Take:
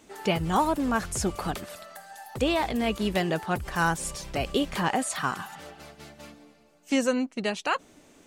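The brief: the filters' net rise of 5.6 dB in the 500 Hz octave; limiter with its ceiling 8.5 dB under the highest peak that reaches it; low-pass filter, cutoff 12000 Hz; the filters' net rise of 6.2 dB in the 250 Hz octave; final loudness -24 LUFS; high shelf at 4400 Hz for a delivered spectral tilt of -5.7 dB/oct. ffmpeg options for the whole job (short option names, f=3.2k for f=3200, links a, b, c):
-af "lowpass=12k,equalizer=f=250:t=o:g=6,equalizer=f=500:t=o:g=5.5,highshelf=f=4.4k:g=-5.5,volume=3dB,alimiter=limit=-13dB:level=0:latency=1"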